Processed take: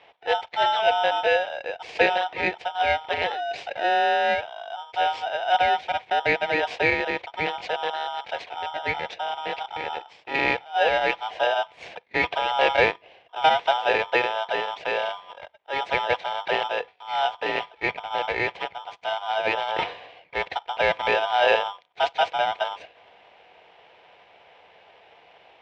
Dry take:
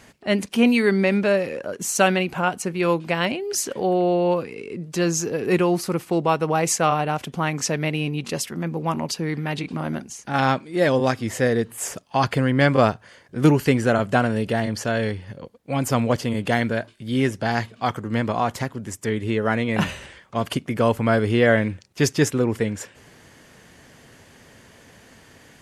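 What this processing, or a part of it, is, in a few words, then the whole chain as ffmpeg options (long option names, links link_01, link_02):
ring modulator pedal into a guitar cabinet: -af "aeval=exprs='val(0)*sgn(sin(2*PI*1100*n/s))':channel_layout=same,highpass=77,equalizer=frequency=130:width_type=q:width=4:gain=-5,equalizer=frequency=240:width_type=q:width=4:gain=-9,equalizer=frequency=480:width_type=q:width=4:gain=8,equalizer=frequency=730:width_type=q:width=4:gain=9,equalizer=frequency=1300:width_type=q:width=4:gain=-10,equalizer=frequency=2300:width_type=q:width=4:gain=9,lowpass=frequency=3500:width=0.5412,lowpass=frequency=3500:width=1.3066,volume=-5dB"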